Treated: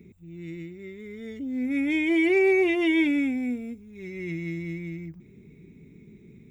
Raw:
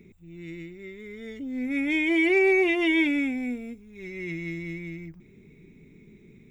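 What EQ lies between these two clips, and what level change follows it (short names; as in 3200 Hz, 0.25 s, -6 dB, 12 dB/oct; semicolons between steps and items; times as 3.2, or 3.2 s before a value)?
HPF 50 Hz; low shelf 440 Hz +7.5 dB; high shelf 6500 Hz +4.5 dB; -3.5 dB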